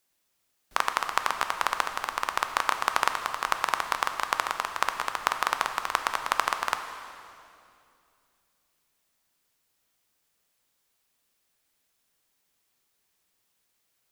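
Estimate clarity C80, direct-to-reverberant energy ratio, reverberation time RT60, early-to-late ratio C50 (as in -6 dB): 9.0 dB, 6.5 dB, 2.6 s, 8.0 dB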